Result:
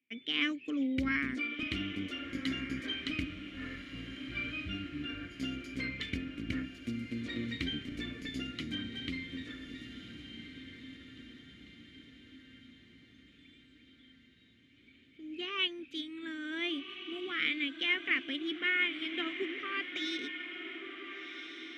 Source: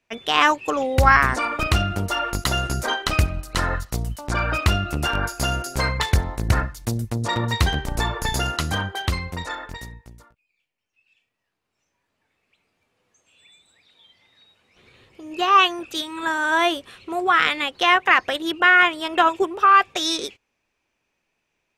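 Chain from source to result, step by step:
0:03.25–0:05.33: harmonic-percussive split with one part muted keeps harmonic
formant filter i
low-shelf EQ 82 Hz +6 dB
feedback delay with all-pass diffusion 1,488 ms, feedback 51%, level −9 dB

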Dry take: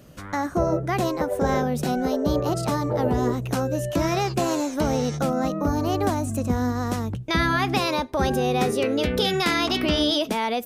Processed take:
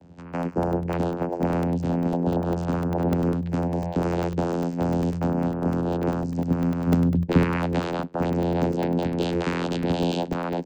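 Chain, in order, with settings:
0:06.86–0:07.43: low-shelf EQ 500 Hz +9 dB
channel vocoder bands 8, saw 86.1 Hz
regular buffer underruns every 0.10 s, samples 64, zero, from 0:00.33

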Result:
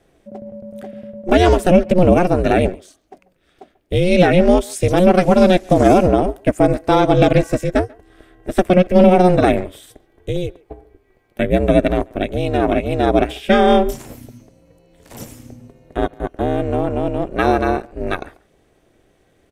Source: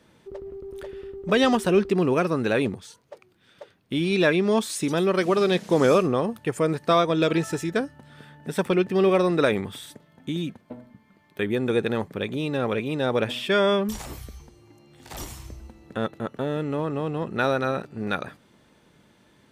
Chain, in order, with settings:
octave-band graphic EQ 500/1,000/4,000 Hz +4/−8/−6 dB
ring modulation 180 Hz
far-end echo of a speakerphone 140 ms, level −19 dB
boost into a limiter +14 dB
expander for the loud parts 1.5 to 1, over −27 dBFS

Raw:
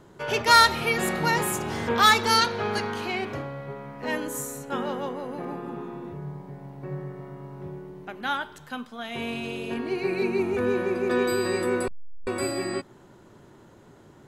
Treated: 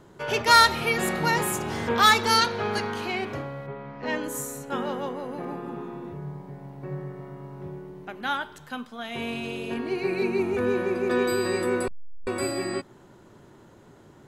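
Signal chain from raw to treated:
0:03.66–0:04.22: low-pass filter 3,400 Hz → 7,700 Hz 24 dB per octave

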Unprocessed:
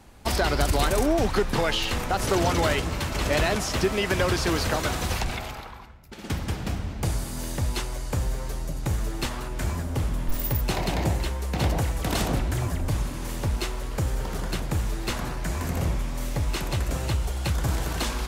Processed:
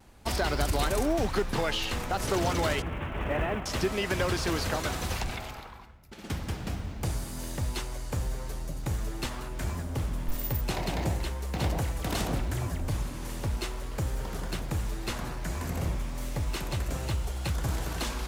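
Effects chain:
0:02.82–0:03.66: variable-slope delta modulation 16 kbit/s
pitch vibrato 0.44 Hz 14 cents
in parallel at −10 dB: floating-point word with a short mantissa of 2 bits
on the sum: level −7 dB

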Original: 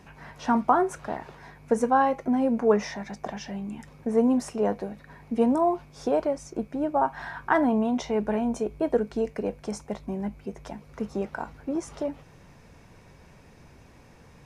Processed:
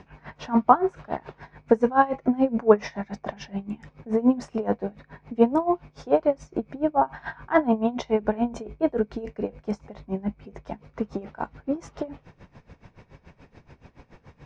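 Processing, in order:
high-frequency loss of the air 150 metres
tremolo with a sine in dB 7 Hz, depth 20 dB
level +7 dB

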